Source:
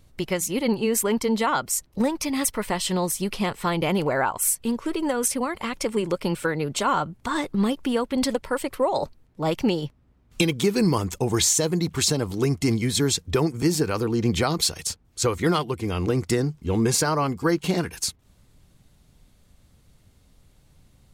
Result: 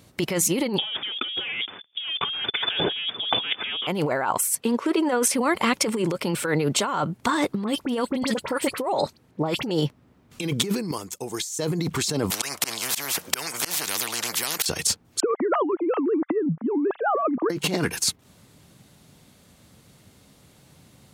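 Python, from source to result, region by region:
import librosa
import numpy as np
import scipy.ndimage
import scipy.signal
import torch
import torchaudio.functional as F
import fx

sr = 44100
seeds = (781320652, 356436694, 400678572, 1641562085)

y = fx.chain(x, sr, fx.leveller(passes=3),
    fx.freq_invert(carrier_hz=3500),
    fx.upward_expand(threshold_db=-37.0, expansion=1.5), at=(0.78, 3.87))
y = fx.chain(y, sr, fx.highpass(hz=250.0, slope=12),
    fx.high_shelf(hz=5100.0, db=-8.5), at=(4.6, 5.34))
y = fx.chain(y, sr, fx.high_shelf(hz=11000.0, db=-4.0),
    fx.dispersion(late='highs', ms=44.0, hz=2200.0), at=(7.64, 9.71))
y = fx.chain(y, sr, fx.bass_treble(bass_db=-5, treble_db=9),
    fx.upward_expand(threshold_db=-22.0, expansion=2.5), at=(10.91, 11.59))
y = fx.chain(y, sr, fx.highpass(hz=340.0, slope=6),
    fx.auto_swell(attack_ms=292.0),
    fx.spectral_comp(ratio=10.0), at=(12.3, 14.66))
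y = fx.chain(y, sr, fx.sine_speech(),
    fx.lowpass(hz=1000.0, slope=12),
    fx.over_compress(threshold_db=-24.0, ratio=-0.5), at=(15.2, 17.5))
y = fx.over_compress(y, sr, threshold_db=-28.0, ratio=-1.0)
y = scipy.signal.sosfilt(scipy.signal.butter(2, 140.0, 'highpass', fs=sr, output='sos'), y)
y = y * 10.0 ** (3.5 / 20.0)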